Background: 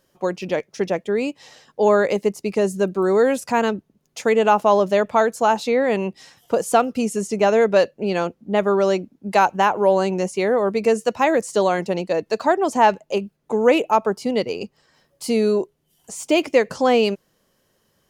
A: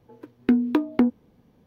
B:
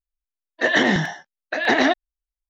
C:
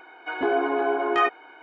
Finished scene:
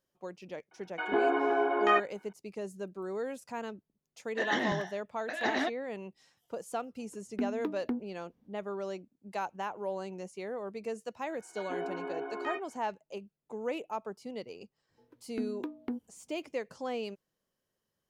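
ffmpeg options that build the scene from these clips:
ffmpeg -i bed.wav -i cue0.wav -i cue1.wav -i cue2.wav -filter_complex "[3:a]asplit=2[link_01][link_02];[1:a]asplit=2[link_03][link_04];[0:a]volume=-19.5dB[link_05];[link_01]agate=range=-11dB:threshold=-43dB:ratio=16:release=100:detection=peak[link_06];[link_02]asplit=2[link_07][link_08];[link_08]adelay=15,volume=-4dB[link_09];[link_07][link_09]amix=inputs=2:normalize=0[link_10];[link_06]atrim=end=1.62,asetpts=PTS-STARTPTS,volume=-4dB,afade=type=in:duration=0.004:curve=hsin,afade=type=out:start_time=1.616:duration=0.004:curve=hsin,adelay=710[link_11];[2:a]atrim=end=2.49,asetpts=PTS-STARTPTS,volume=-13.5dB,afade=type=in:duration=0.004:curve=hsin,afade=type=out:start_time=2.486:duration=0.004:curve=hsin,adelay=3760[link_12];[link_03]atrim=end=1.66,asetpts=PTS-STARTPTS,volume=-14.5dB,afade=type=in:duration=0.1,afade=type=out:start_time=1.56:duration=0.1,adelay=304290S[link_13];[link_10]atrim=end=1.62,asetpts=PTS-STARTPTS,volume=-15.5dB,afade=type=in:duration=0.004:curve=hsin,afade=type=out:start_time=1.616:duration=0.004:curve=hsin,adelay=11290[link_14];[link_04]atrim=end=1.66,asetpts=PTS-STARTPTS,volume=-17dB,afade=type=in:duration=0.004:curve=hsin,afade=type=out:start_time=1.656:duration=0.004:curve=hsin,adelay=14890[link_15];[link_05][link_11][link_12][link_13][link_14][link_15]amix=inputs=6:normalize=0" out.wav

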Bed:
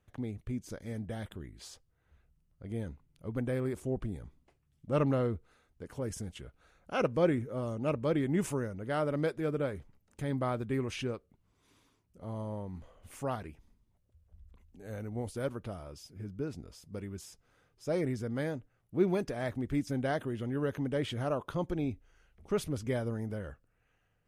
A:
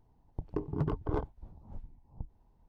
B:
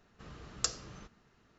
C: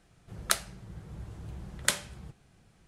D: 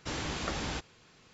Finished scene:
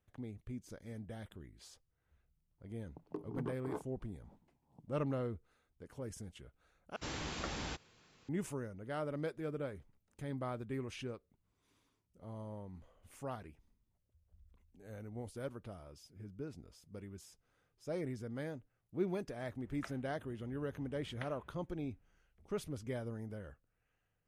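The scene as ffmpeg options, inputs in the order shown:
ffmpeg -i bed.wav -i cue0.wav -i cue1.wav -i cue2.wav -i cue3.wav -filter_complex "[0:a]volume=-8dB[link_01];[1:a]highpass=frequency=160:width=0.5412,highpass=frequency=160:width=1.3066[link_02];[3:a]lowpass=frequency=2600:width=0.5412,lowpass=frequency=2600:width=1.3066[link_03];[link_01]asplit=2[link_04][link_05];[link_04]atrim=end=6.964[link_06];[4:a]atrim=end=1.33,asetpts=PTS-STARTPTS,volume=-6dB[link_07];[link_05]atrim=start=8.286[link_08];[link_02]atrim=end=2.68,asetpts=PTS-STARTPTS,volume=-8dB,afade=type=in:duration=0.004:curve=hsin,afade=type=out:start_time=2.676:duration=0.004:curve=hsin,adelay=2580[link_09];[link_03]atrim=end=2.87,asetpts=PTS-STARTPTS,volume=-16.5dB,afade=type=in:duration=0.004:curve=hsin,afade=type=out:start_time=2.866:duration=0.004:curve=hsin,adelay=19330[link_10];[link_06][link_07]acrossfade=duration=0.004:curve1=hsin:curve2=hsin[link_11];[link_11][link_08]acrossfade=duration=0.004:curve1=hsin:curve2=hsin[link_12];[link_12][link_09][link_10]amix=inputs=3:normalize=0" out.wav

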